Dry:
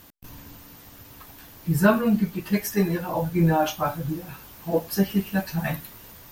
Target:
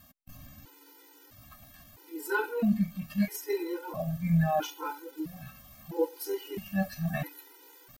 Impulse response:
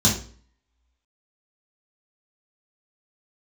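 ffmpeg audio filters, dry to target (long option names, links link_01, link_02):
-af "atempo=0.79,afftfilt=real='re*gt(sin(2*PI*0.76*pts/sr)*(1-2*mod(floor(b*sr/1024/260),2)),0)':imag='im*gt(sin(2*PI*0.76*pts/sr)*(1-2*mod(floor(b*sr/1024/260),2)),0)':win_size=1024:overlap=0.75,volume=-4.5dB"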